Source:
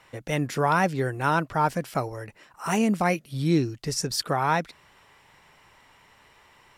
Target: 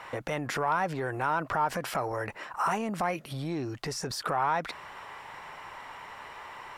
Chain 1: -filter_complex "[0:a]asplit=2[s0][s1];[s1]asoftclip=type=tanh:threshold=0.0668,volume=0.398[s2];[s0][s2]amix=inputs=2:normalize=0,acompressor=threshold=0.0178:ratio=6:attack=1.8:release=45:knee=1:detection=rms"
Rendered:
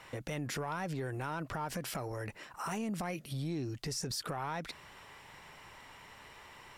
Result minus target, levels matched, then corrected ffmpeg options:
1 kHz band -4.5 dB
-filter_complex "[0:a]asplit=2[s0][s1];[s1]asoftclip=type=tanh:threshold=0.0668,volume=0.398[s2];[s0][s2]amix=inputs=2:normalize=0,acompressor=threshold=0.0178:ratio=6:attack=1.8:release=45:knee=1:detection=rms,equalizer=f=1000:t=o:w=2.6:g=12.5"

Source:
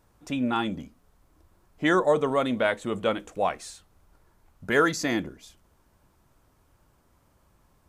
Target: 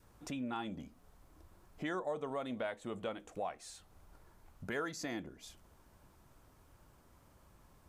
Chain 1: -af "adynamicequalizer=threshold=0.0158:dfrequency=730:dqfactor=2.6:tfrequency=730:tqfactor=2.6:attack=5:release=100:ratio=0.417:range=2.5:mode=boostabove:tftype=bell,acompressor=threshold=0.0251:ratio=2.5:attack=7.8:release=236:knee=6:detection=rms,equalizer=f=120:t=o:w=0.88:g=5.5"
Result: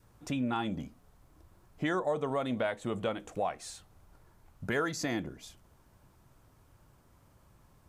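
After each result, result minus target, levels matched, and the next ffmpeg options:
compression: peak gain reduction -7 dB; 125 Hz band +3.0 dB
-af "adynamicequalizer=threshold=0.0158:dfrequency=730:dqfactor=2.6:tfrequency=730:tqfactor=2.6:attack=5:release=100:ratio=0.417:range=2.5:mode=boostabove:tftype=bell,acompressor=threshold=0.00668:ratio=2.5:attack=7.8:release=236:knee=6:detection=rms,equalizer=f=120:t=o:w=0.88:g=5.5"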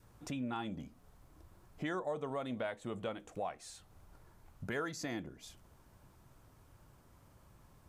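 125 Hz band +3.5 dB
-af "adynamicequalizer=threshold=0.0158:dfrequency=730:dqfactor=2.6:tfrequency=730:tqfactor=2.6:attack=5:release=100:ratio=0.417:range=2.5:mode=boostabove:tftype=bell,acompressor=threshold=0.00668:ratio=2.5:attack=7.8:release=236:knee=6:detection=rms"

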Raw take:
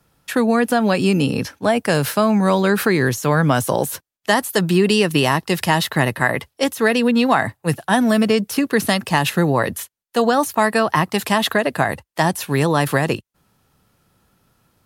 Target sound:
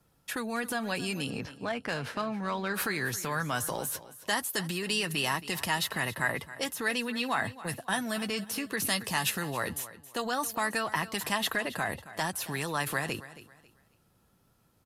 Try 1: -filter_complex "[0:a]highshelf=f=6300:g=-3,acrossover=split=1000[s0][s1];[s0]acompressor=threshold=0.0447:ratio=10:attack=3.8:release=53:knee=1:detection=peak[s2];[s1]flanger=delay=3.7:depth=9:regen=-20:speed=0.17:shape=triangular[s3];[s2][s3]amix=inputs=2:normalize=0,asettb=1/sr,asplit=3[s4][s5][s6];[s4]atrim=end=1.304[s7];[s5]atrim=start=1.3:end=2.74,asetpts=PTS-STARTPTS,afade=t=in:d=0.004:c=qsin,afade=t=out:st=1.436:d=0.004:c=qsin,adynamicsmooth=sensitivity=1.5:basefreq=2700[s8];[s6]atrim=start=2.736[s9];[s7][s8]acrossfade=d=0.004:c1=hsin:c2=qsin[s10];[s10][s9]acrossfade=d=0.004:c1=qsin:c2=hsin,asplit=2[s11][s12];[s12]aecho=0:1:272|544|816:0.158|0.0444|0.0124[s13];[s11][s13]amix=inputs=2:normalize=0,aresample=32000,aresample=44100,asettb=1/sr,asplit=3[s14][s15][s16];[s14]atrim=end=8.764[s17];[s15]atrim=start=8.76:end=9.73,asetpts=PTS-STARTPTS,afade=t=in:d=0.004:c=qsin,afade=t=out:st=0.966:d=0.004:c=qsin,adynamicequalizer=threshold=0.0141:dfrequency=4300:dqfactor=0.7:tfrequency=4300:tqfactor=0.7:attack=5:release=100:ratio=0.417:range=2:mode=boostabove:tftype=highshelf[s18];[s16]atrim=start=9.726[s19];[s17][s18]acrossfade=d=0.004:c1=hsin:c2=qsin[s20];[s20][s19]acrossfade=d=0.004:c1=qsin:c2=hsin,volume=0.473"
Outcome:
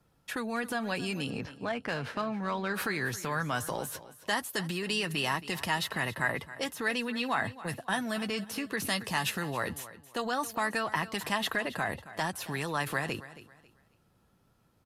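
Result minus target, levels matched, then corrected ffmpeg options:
8 kHz band -4.5 dB
-filter_complex "[0:a]highshelf=f=6300:g=5,acrossover=split=1000[s0][s1];[s0]acompressor=threshold=0.0447:ratio=10:attack=3.8:release=53:knee=1:detection=peak[s2];[s1]flanger=delay=3.7:depth=9:regen=-20:speed=0.17:shape=triangular[s3];[s2][s3]amix=inputs=2:normalize=0,asettb=1/sr,asplit=3[s4][s5][s6];[s4]atrim=end=1.304[s7];[s5]atrim=start=1.3:end=2.74,asetpts=PTS-STARTPTS,afade=t=in:d=0.004:c=qsin,afade=t=out:st=1.436:d=0.004:c=qsin,adynamicsmooth=sensitivity=1.5:basefreq=2700[s8];[s6]atrim=start=2.736[s9];[s7][s8]acrossfade=d=0.004:c1=hsin:c2=qsin[s10];[s10][s9]acrossfade=d=0.004:c1=qsin:c2=hsin,asplit=2[s11][s12];[s12]aecho=0:1:272|544|816:0.158|0.0444|0.0124[s13];[s11][s13]amix=inputs=2:normalize=0,aresample=32000,aresample=44100,asettb=1/sr,asplit=3[s14][s15][s16];[s14]atrim=end=8.764[s17];[s15]atrim=start=8.76:end=9.73,asetpts=PTS-STARTPTS,afade=t=in:d=0.004:c=qsin,afade=t=out:st=0.966:d=0.004:c=qsin,adynamicequalizer=threshold=0.0141:dfrequency=4300:dqfactor=0.7:tfrequency=4300:tqfactor=0.7:attack=5:release=100:ratio=0.417:range=2:mode=boostabove:tftype=highshelf[s18];[s16]atrim=start=9.726[s19];[s17][s18]acrossfade=d=0.004:c1=hsin:c2=qsin[s20];[s20][s19]acrossfade=d=0.004:c1=qsin:c2=hsin,volume=0.473"

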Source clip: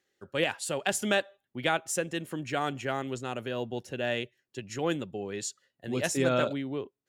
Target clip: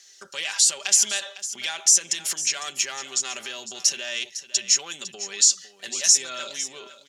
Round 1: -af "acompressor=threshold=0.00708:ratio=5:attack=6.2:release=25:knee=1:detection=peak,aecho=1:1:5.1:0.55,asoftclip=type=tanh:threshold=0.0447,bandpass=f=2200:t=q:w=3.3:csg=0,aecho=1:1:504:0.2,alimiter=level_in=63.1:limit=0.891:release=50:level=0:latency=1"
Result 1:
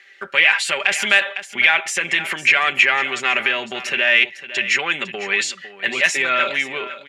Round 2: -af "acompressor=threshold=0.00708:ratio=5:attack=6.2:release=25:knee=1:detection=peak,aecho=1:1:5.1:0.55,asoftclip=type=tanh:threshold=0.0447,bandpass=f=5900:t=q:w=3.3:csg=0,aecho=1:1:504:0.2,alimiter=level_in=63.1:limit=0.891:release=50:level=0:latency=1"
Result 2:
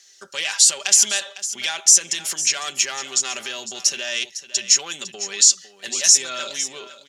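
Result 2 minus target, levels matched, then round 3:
compression: peak gain reduction -5 dB
-af "acompressor=threshold=0.00355:ratio=5:attack=6.2:release=25:knee=1:detection=peak,aecho=1:1:5.1:0.55,asoftclip=type=tanh:threshold=0.0447,bandpass=f=5900:t=q:w=3.3:csg=0,aecho=1:1:504:0.2,alimiter=level_in=63.1:limit=0.891:release=50:level=0:latency=1"

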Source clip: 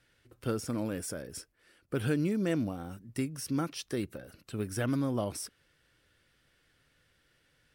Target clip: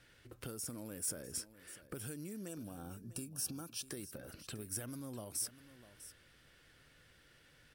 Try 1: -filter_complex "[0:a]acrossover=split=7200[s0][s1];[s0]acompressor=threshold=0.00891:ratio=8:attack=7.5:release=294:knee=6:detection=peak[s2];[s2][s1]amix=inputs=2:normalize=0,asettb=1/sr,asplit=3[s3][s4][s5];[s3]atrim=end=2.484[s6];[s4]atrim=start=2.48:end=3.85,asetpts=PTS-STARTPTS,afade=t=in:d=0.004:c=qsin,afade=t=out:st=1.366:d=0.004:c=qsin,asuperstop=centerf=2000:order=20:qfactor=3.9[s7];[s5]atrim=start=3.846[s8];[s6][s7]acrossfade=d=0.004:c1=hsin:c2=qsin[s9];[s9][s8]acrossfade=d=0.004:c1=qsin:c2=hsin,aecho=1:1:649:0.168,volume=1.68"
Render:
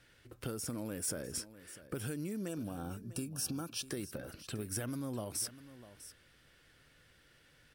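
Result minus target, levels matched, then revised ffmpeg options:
compression: peak gain reduction -6.5 dB
-filter_complex "[0:a]acrossover=split=7200[s0][s1];[s0]acompressor=threshold=0.00376:ratio=8:attack=7.5:release=294:knee=6:detection=peak[s2];[s2][s1]amix=inputs=2:normalize=0,asettb=1/sr,asplit=3[s3][s4][s5];[s3]atrim=end=2.484[s6];[s4]atrim=start=2.48:end=3.85,asetpts=PTS-STARTPTS,afade=t=in:d=0.004:c=qsin,afade=t=out:st=1.366:d=0.004:c=qsin,asuperstop=centerf=2000:order=20:qfactor=3.9[s7];[s5]atrim=start=3.846[s8];[s6][s7]acrossfade=d=0.004:c1=hsin:c2=qsin[s9];[s9][s8]acrossfade=d=0.004:c1=qsin:c2=hsin,aecho=1:1:649:0.168,volume=1.68"

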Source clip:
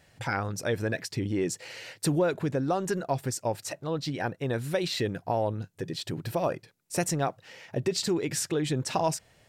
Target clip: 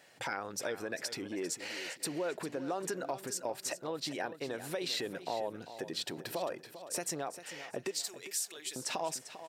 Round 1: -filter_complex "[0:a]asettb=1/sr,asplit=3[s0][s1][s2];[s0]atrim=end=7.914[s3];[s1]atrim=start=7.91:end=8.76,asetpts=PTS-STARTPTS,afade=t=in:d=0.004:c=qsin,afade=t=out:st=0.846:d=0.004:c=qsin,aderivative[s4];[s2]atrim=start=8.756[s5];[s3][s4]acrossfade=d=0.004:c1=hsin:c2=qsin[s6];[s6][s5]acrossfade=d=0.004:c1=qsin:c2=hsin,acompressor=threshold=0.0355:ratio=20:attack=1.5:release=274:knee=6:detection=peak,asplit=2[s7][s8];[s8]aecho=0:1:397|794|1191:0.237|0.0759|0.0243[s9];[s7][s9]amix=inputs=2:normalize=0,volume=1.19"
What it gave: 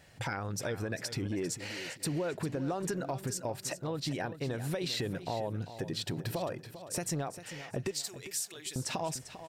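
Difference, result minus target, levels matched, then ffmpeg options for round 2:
250 Hz band +3.0 dB
-filter_complex "[0:a]asettb=1/sr,asplit=3[s0][s1][s2];[s0]atrim=end=7.914[s3];[s1]atrim=start=7.91:end=8.76,asetpts=PTS-STARTPTS,afade=t=in:d=0.004:c=qsin,afade=t=out:st=0.846:d=0.004:c=qsin,aderivative[s4];[s2]atrim=start=8.756[s5];[s3][s4]acrossfade=d=0.004:c1=hsin:c2=qsin[s6];[s6][s5]acrossfade=d=0.004:c1=qsin:c2=hsin,acompressor=threshold=0.0355:ratio=20:attack=1.5:release=274:knee=6:detection=peak,highpass=320,asplit=2[s7][s8];[s8]aecho=0:1:397|794|1191:0.237|0.0759|0.0243[s9];[s7][s9]amix=inputs=2:normalize=0,volume=1.19"

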